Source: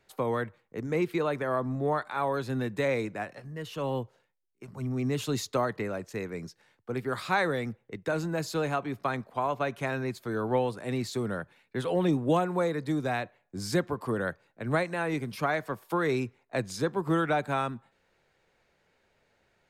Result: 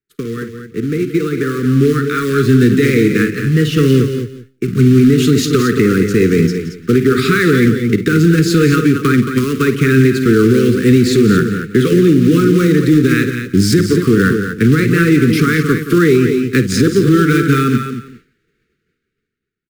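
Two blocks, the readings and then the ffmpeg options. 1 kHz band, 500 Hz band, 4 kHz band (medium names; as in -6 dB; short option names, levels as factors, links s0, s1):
+8.0 dB, +16.0 dB, +17.5 dB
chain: -filter_complex "[0:a]acompressor=threshold=0.0251:ratio=4,acrusher=bits=3:mode=log:mix=0:aa=0.000001,asplit=2[s0][s1];[s1]aecho=0:1:174|348:0.224|0.0358[s2];[s0][s2]amix=inputs=2:normalize=0,dynaudnorm=f=520:g=7:m=3.98,asuperstop=centerf=750:order=12:qfactor=0.95,highshelf=f=2900:g=-6,asplit=2[s3][s4];[s4]aecho=0:1:52.48|224.5:0.251|0.355[s5];[s3][s5]amix=inputs=2:normalize=0,agate=range=0.0224:threshold=0.00355:ratio=3:detection=peak,equalizer=f=240:t=o:w=2.3:g=6,alimiter=level_in=4.22:limit=0.891:release=50:level=0:latency=1,volume=0.891"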